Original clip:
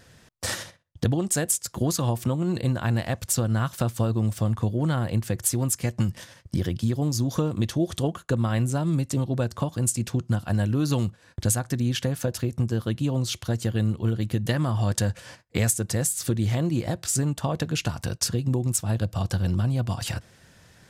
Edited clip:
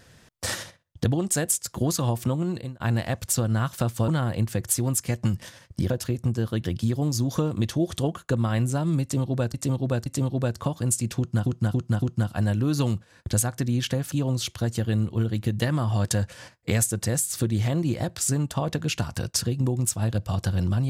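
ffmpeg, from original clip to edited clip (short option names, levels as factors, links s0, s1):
-filter_complex "[0:a]asplit=11[s0][s1][s2][s3][s4][s5][s6][s7][s8][s9][s10];[s0]atrim=end=2.8,asetpts=PTS-STARTPTS,afade=t=out:st=2.4:d=0.4[s11];[s1]atrim=start=2.8:end=4.082,asetpts=PTS-STARTPTS,afade=t=in:d=0.004:c=hsin[s12];[s2]atrim=start=4.828:end=6.652[s13];[s3]atrim=start=12.238:end=12.992[s14];[s4]atrim=start=6.648:end=9.542[s15];[s5]atrim=start=9.018:end=9.542[s16];[s6]atrim=start=9.018:end=10.422[s17];[s7]atrim=start=10.138:end=10.422[s18];[s8]atrim=start=10.138:end=10.422[s19];[s9]atrim=start=10.138:end=12.242[s20];[s10]atrim=start=12.988[s21];[s11][s12]concat=n=2:v=0:a=1[s22];[s22][s13]acrossfade=d=0.004:c1=hsin:c2=hsin[s23];[s23][s14]acrossfade=d=0.004:c1=hsin:c2=hsin[s24];[s24][s15]acrossfade=d=0.004:c1=hsin:c2=hsin[s25];[s25][s16]acrossfade=d=0.004:c1=hsin:c2=hsin[s26];[s26][s17]acrossfade=d=0.004:c1=hsin:c2=hsin[s27];[s27][s18]acrossfade=d=0.004:c1=hsin:c2=hsin[s28];[s28][s19]acrossfade=d=0.004:c1=hsin:c2=hsin[s29];[s29][s20]acrossfade=d=0.004:c1=hsin:c2=hsin[s30];[s30][s21]acrossfade=d=0.004:c1=hsin:c2=hsin"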